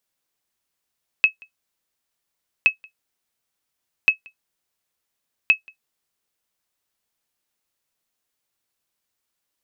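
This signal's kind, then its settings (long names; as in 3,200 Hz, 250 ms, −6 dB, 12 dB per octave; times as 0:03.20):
ping with an echo 2,580 Hz, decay 0.11 s, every 1.42 s, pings 4, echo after 0.18 s, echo −29 dB −5 dBFS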